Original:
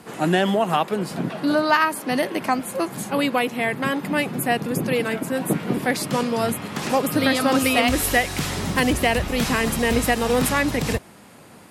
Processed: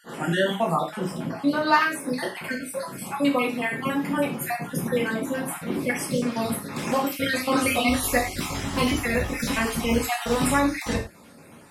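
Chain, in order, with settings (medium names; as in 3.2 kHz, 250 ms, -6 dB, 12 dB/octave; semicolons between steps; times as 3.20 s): random holes in the spectrogram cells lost 43%; gated-style reverb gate 130 ms falling, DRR -2.5 dB; trim -5 dB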